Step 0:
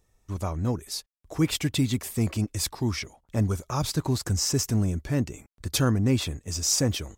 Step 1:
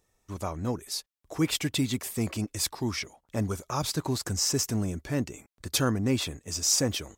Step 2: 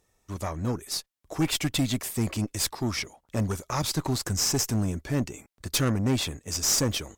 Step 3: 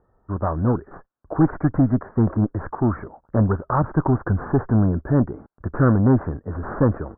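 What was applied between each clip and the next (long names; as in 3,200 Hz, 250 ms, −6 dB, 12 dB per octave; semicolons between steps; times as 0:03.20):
low-shelf EQ 140 Hz −10.5 dB
tube saturation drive 23 dB, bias 0.55; level +5 dB
Butterworth low-pass 1,600 Hz 72 dB per octave; level +9 dB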